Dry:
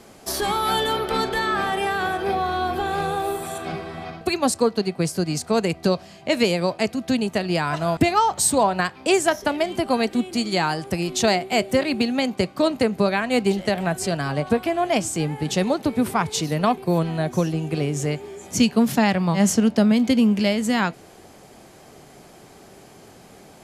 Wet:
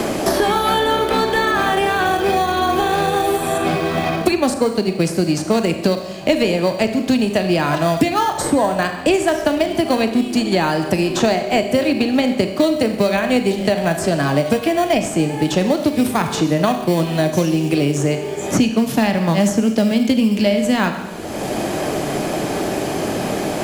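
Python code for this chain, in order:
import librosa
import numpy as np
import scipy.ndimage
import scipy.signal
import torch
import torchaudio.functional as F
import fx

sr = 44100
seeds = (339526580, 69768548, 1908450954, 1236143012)

p1 = fx.peak_eq(x, sr, hz=3000.0, db=2.0, octaves=0.77)
p2 = fx.rev_schroeder(p1, sr, rt60_s=0.73, comb_ms=28, drr_db=7.5)
p3 = fx.sample_hold(p2, sr, seeds[0], rate_hz=2600.0, jitter_pct=0)
p4 = p2 + (p3 * 10.0 ** (-11.0 / 20.0))
p5 = fx.small_body(p4, sr, hz=(310.0, 600.0, 1700.0, 2500.0), ring_ms=45, db=6)
y = fx.band_squash(p5, sr, depth_pct=100)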